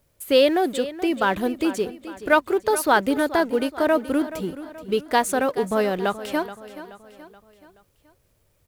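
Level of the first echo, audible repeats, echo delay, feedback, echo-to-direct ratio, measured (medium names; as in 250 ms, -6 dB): -14.5 dB, 4, 427 ms, 47%, -13.5 dB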